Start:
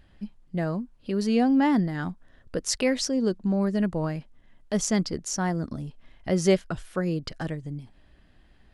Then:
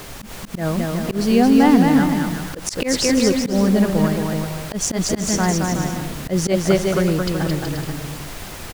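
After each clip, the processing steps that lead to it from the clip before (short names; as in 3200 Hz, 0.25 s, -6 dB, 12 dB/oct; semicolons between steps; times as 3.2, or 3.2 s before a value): added noise pink -42 dBFS; bouncing-ball echo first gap 0.22 s, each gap 0.7×, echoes 5; auto swell 0.103 s; gain +7 dB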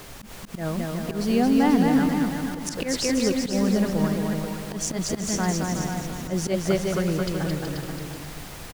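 echo 0.486 s -9 dB; gain -6.5 dB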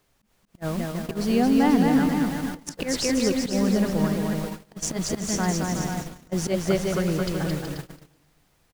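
gate -29 dBFS, range -26 dB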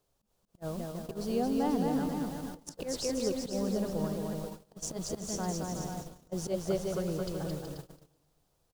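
graphic EQ 250/500/2000 Hz -4/+4/-11 dB; gain -8.5 dB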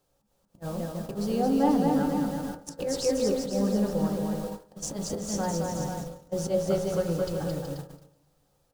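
reverb RT60 0.40 s, pre-delay 3 ms, DRR 2.5 dB; gain +3 dB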